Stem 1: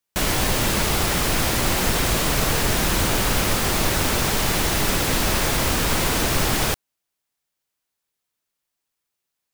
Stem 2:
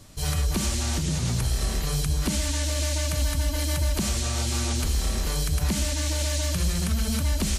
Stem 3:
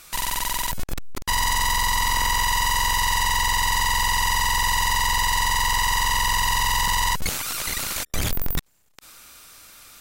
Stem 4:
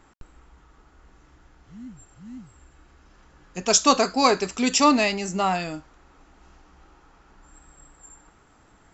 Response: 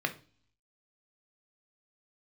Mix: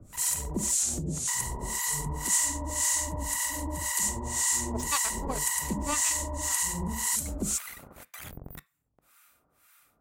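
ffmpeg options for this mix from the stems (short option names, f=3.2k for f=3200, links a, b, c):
-filter_complex "[1:a]acrossover=split=170|3000[a][b][c];[a]acompressor=threshold=-44dB:ratio=2[d];[d][b][c]amix=inputs=3:normalize=0,firequalizer=gain_entry='entry(400,0);entry(1200,-14);entry(5100,-3);entry(7200,12);entry(11000,6)':delay=0.05:min_phase=1,volume=0dB[e];[2:a]highpass=45,equalizer=f=4.6k:t=o:w=1.5:g=-10.5,volume=-11dB,asplit=2[f][g];[g]volume=-13.5dB[h];[3:a]agate=range=-33dB:threshold=-46dB:ratio=3:detection=peak,aeval=exprs='0.708*(cos(1*acos(clip(val(0)/0.708,-1,1)))-cos(1*PI/2))+0.00501*(cos(5*acos(clip(val(0)/0.708,-1,1)))-cos(5*PI/2))+0.112*(cos(7*acos(clip(val(0)/0.708,-1,1)))-cos(7*PI/2))':c=same,adelay=1050,volume=-9dB[i];[4:a]atrim=start_sample=2205[j];[h][j]afir=irnorm=-1:irlink=0[k];[e][f][i][k]amix=inputs=4:normalize=0,acrossover=split=920[l][m];[l]aeval=exprs='val(0)*(1-1/2+1/2*cos(2*PI*1.9*n/s))':c=same[n];[m]aeval=exprs='val(0)*(1-1/2-1/2*cos(2*PI*1.9*n/s))':c=same[o];[n][o]amix=inputs=2:normalize=0"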